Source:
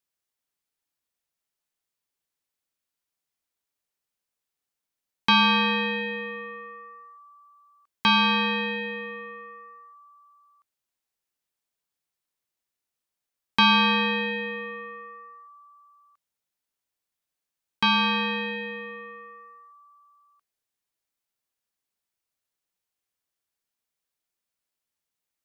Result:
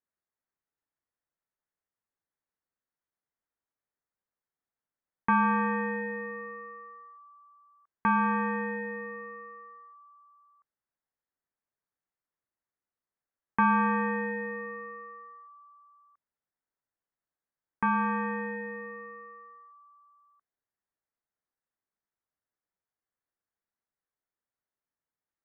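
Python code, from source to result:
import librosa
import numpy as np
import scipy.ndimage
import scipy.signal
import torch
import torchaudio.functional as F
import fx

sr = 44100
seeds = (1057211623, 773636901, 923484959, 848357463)

y = scipy.signal.sosfilt(scipy.signal.butter(8, 2000.0, 'lowpass', fs=sr, output='sos'), x)
y = F.gain(torch.from_numpy(y), -2.5).numpy()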